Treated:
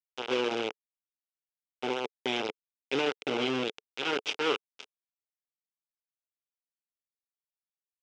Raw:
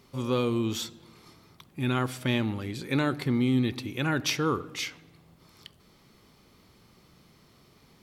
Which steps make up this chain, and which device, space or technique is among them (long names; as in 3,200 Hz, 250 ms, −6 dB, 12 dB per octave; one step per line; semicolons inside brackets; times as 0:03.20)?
0:00.68–0:02.11: elliptic band-stop filter 900–7,000 Hz, stop band 40 dB
hand-held game console (bit reduction 4 bits; loudspeaker in its box 420–4,600 Hz, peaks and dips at 440 Hz +6 dB, 640 Hz −7 dB, 1,100 Hz −8 dB, 1,800 Hz −10 dB, 2,900 Hz +4 dB, 4,300 Hz −10 dB)